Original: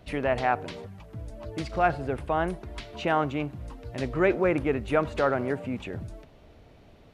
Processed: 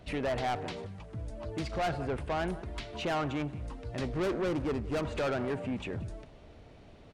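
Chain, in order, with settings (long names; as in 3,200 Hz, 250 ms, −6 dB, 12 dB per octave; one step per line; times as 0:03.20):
0:04.12–0:05.01: running median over 41 samples
downsampling to 22,050 Hz
on a send: single-tap delay 178 ms −22.5 dB
on the sum: soft clipping −27.5 dBFS, distortion −7 dB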